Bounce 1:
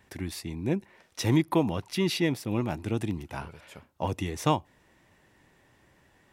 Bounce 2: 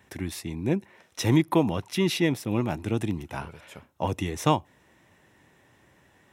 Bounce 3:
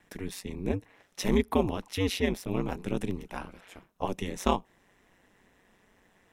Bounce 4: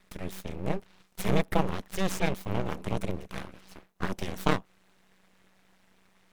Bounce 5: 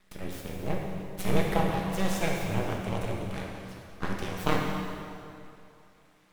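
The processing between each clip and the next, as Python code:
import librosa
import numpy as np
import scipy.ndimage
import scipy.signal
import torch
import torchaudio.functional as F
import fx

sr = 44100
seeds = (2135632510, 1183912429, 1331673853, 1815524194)

y1 = scipy.signal.sosfilt(scipy.signal.butter(2, 64.0, 'highpass', fs=sr, output='sos'), x)
y1 = fx.notch(y1, sr, hz=4600.0, q=9.4)
y1 = F.gain(torch.from_numpy(y1), 2.5).numpy()
y2 = y1 * np.sin(2.0 * np.pi * 94.0 * np.arange(len(y1)) / sr)
y2 = F.gain(torch.from_numpy(y2), -1.0).numpy()
y3 = np.abs(y2)
y3 = F.gain(torch.from_numpy(y3), 1.5).numpy()
y4 = fx.rev_plate(y3, sr, seeds[0], rt60_s=2.5, hf_ratio=0.85, predelay_ms=0, drr_db=-1.5)
y4 = F.gain(torch.from_numpy(y4), -2.5).numpy()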